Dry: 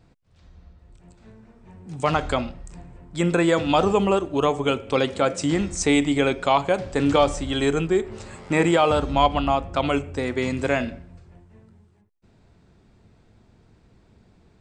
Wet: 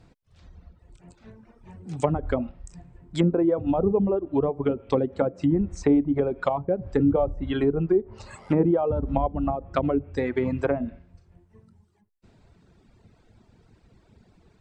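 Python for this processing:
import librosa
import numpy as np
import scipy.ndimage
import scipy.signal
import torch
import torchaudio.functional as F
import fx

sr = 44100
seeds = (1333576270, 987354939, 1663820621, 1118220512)

y = fx.dereverb_blind(x, sr, rt60_s=1.4)
y = fx.env_lowpass_down(y, sr, base_hz=450.0, full_db=-19.0)
y = y * librosa.db_to_amplitude(2.0)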